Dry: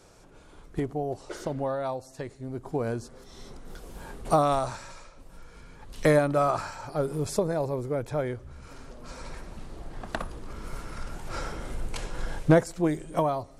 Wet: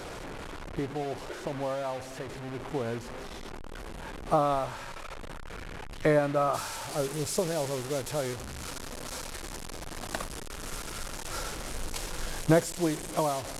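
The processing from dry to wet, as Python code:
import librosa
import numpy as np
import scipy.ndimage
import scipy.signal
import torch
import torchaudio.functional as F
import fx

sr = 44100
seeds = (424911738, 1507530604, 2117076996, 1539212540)

y = fx.delta_mod(x, sr, bps=64000, step_db=-30.0)
y = fx.bass_treble(y, sr, bass_db=-2, treble_db=fx.steps((0.0, -10.0), (6.53, 5.0)))
y = y * 10.0 ** (-2.5 / 20.0)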